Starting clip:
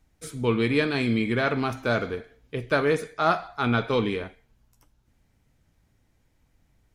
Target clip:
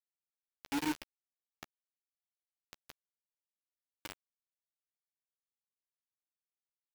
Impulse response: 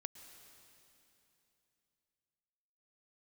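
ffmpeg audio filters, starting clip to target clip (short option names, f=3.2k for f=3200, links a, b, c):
-filter_complex "[0:a]aeval=exprs='val(0)+0.5*0.0376*sgn(val(0))':c=same,aeval=exprs='(tanh(12.6*val(0)+0.55)-tanh(0.55))/12.6':c=same,asplit=3[a][b][c];[a]bandpass=f=300:t=q:w=8,volume=0dB[d];[b]bandpass=f=870:t=q:w=8,volume=-6dB[e];[c]bandpass=f=2.24k:t=q:w=8,volume=-9dB[f];[d][e][f]amix=inputs=3:normalize=0,aeval=exprs='val(0)+0.00112*(sin(2*PI*60*n/s)+sin(2*PI*2*60*n/s)/2+sin(2*PI*3*60*n/s)/3+sin(2*PI*4*60*n/s)/4+sin(2*PI*5*60*n/s)/5)':c=same,acrusher=bits=4:mix=0:aa=0.000001,asplit=2[g][h];[h]adelay=13,volume=-13dB[i];[g][i]amix=inputs=2:normalize=0,volume=-5dB"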